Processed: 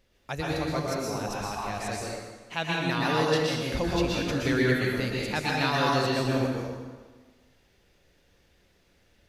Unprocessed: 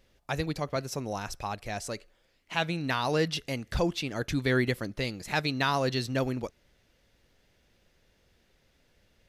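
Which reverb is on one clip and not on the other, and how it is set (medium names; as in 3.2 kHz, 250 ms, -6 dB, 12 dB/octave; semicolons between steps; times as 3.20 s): plate-style reverb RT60 1.4 s, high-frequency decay 0.8×, pre-delay 105 ms, DRR -4.5 dB; trim -2.5 dB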